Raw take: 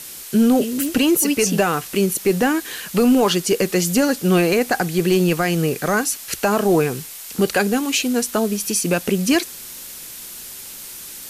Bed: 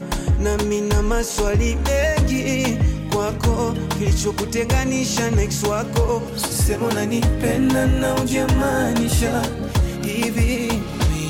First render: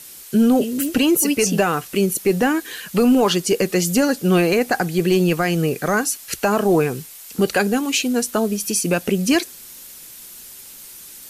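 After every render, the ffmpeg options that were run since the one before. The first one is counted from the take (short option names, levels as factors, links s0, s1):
-af "afftdn=nr=6:nf=-36"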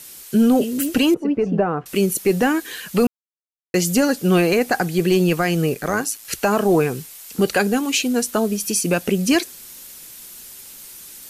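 -filter_complex "[0:a]asettb=1/sr,asplit=3[s0][s1][s2];[s0]atrim=end=1.144[s3];[s1]atrim=start=1.14:end=1.86,asetpts=PTS-STARTPTS,afade=t=in:d=0.004:c=qsin,afade=t=out:st=0.716:d=0.004:c=qsin,lowpass=1000[s4];[s2]atrim=start=1.856[s5];[s3][s4]acrossfade=d=0.004:c1=hsin:c2=qsin[s6];[s6][s5]acrossfade=d=0.004:c1=qsin:c2=hsin,asettb=1/sr,asplit=3[s7][s8][s9];[s7]atrim=end=5.744[s10];[s8]atrim=start=5.74:end=6.25,asetpts=PTS-STARTPTS,afade=t=in:d=0.004:c=qsin,afade=t=out:st=0.506:d=0.004:c=qsin,tremolo=f=110:d=0.571[s11];[s9]atrim=start=6.246[s12];[s10][s11]acrossfade=d=0.004:c1=hsin:c2=qsin[s13];[s13][s12]acrossfade=d=0.004:c1=qsin:c2=hsin,asplit=3[s14][s15][s16];[s14]atrim=end=3.07,asetpts=PTS-STARTPTS,afade=t=out:st=3.066:d=0.004:c=hsin[s17];[s15]atrim=start=3.07:end=3.74,asetpts=PTS-STARTPTS,volume=0[s18];[s16]atrim=start=3.74,asetpts=PTS-STARTPTS,afade=t=in:d=0.004:c=hsin[s19];[s17][s18][s19]concat=n=3:v=0:a=1"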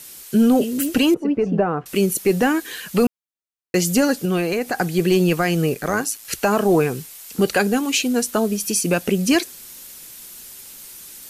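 -filter_complex "[0:a]asettb=1/sr,asplit=3[s0][s1][s2];[s0]atrim=end=4.254[s3];[s1]atrim=start=4.25:end=4.79,asetpts=PTS-STARTPTS,afade=t=in:d=0.004:c=qsin,afade=t=out:st=0.536:d=0.004:c=qsin,acompressor=threshold=0.0501:ratio=1.5:attack=3.2:release=140:knee=1:detection=peak[s4];[s2]atrim=start=4.786[s5];[s3][s4]acrossfade=d=0.004:c1=hsin:c2=qsin[s6];[s6][s5]acrossfade=d=0.004:c1=qsin:c2=hsin"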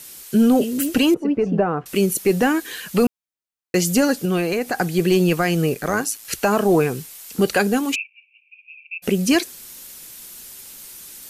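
-filter_complex "[0:a]asplit=3[s0][s1][s2];[s0]afade=t=out:st=7.94:d=0.02[s3];[s1]asuperpass=centerf=2500:order=8:qfactor=5.7,afade=t=in:st=7.94:d=0.02,afade=t=out:st=9.02:d=0.02[s4];[s2]afade=t=in:st=9.02:d=0.02[s5];[s3][s4][s5]amix=inputs=3:normalize=0"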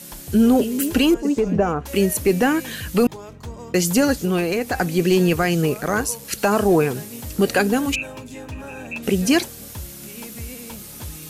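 -filter_complex "[1:a]volume=0.15[s0];[0:a][s0]amix=inputs=2:normalize=0"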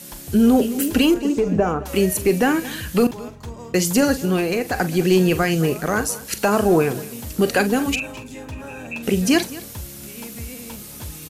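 -filter_complex "[0:a]asplit=2[s0][s1];[s1]adelay=43,volume=0.224[s2];[s0][s2]amix=inputs=2:normalize=0,aecho=1:1:213:0.119"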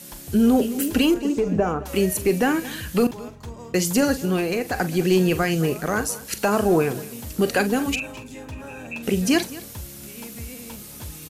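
-af "volume=0.75"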